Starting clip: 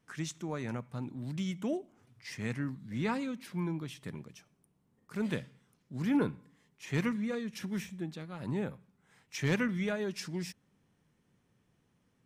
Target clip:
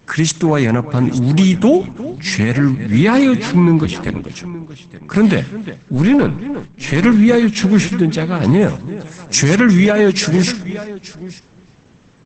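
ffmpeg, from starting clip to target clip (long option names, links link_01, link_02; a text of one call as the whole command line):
ffmpeg -i in.wav -filter_complex "[0:a]asplit=3[link_01][link_02][link_03];[link_01]afade=type=out:start_time=5.94:duration=0.02[link_04];[link_02]aeval=exprs='if(lt(val(0),0),0.447*val(0),val(0))':channel_layout=same,afade=type=in:start_time=5.94:duration=0.02,afade=type=out:start_time=7.02:duration=0.02[link_05];[link_03]afade=type=in:start_time=7.02:duration=0.02[link_06];[link_04][link_05][link_06]amix=inputs=3:normalize=0,asettb=1/sr,asplit=3[link_07][link_08][link_09];[link_07]atrim=end=8.614[link_10];[link_08]atrim=start=8.61:end=9.56,asetpts=PTS-STARTPTS,afade=type=in:duration=0.004:curve=qsin,afade=type=out:start_time=0.946:duration=0.004:curve=qsin,highshelf=frequency=4600:width_type=q:width=1.5:gain=7.5[link_11];[link_09]atrim=start=9.556[link_12];[link_10][link_11]acrossfade=duration=0.004:curve1=hsin:curve2=qsin[link_13];[link_13][link_12]acrossfade=duration=0.004:curve1=qsin:curve2=hsin,asplit=2[link_14][link_15];[link_15]aecho=0:1:874:0.133[link_16];[link_14][link_16]amix=inputs=2:normalize=0,asettb=1/sr,asplit=3[link_17][link_18][link_19];[link_17]atrim=end=3.844[link_20];[link_18]atrim=start=3.84:end=4.25,asetpts=PTS-STARTPTS,afade=type=in:duration=0.004:curve=qsin,afade=type=out:start_time=0.406:duration=0.004:curve=qsin,aeval=exprs='val(0)*sin(2*PI*46*n/s)':channel_layout=same[link_21];[link_19]atrim=start=4.246[link_22];[link_20][link_21]acrossfade=duration=0.004:curve1=hsin:curve2=qsin[link_23];[link_23][link_22]acrossfade=duration=0.004:curve1=qsin:curve2=hsin,asplit=2[link_24][link_25];[link_25]adelay=351,lowpass=frequency=4300:poles=1,volume=-18dB,asplit=2[link_26][link_27];[link_27]adelay=351,lowpass=frequency=4300:poles=1,volume=0.15[link_28];[link_26][link_28]amix=inputs=2:normalize=0[link_29];[link_24][link_29]amix=inputs=2:normalize=0,alimiter=level_in=27dB:limit=-1dB:release=50:level=0:latency=1,volume=-1.5dB" -ar 48000 -c:a libopus -b:a 12k out.opus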